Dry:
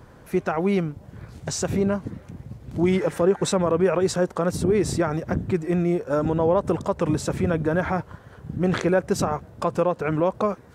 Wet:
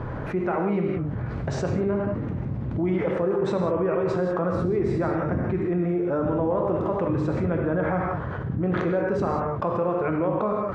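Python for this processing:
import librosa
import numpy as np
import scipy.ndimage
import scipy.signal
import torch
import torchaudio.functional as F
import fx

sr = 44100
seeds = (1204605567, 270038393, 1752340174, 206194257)

y = scipy.signal.sosfilt(scipy.signal.butter(2, 1900.0, 'lowpass', fs=sr, output='sos'), x)
y = fx.rev_gated(y, sr, seeds[0], gate_ms=210, shape='flat', drr_db=1.5)
y = fx.env_flatten(y, sr, amount_pct=70)
y = y * librosa.db_to_amplitude(-8.0)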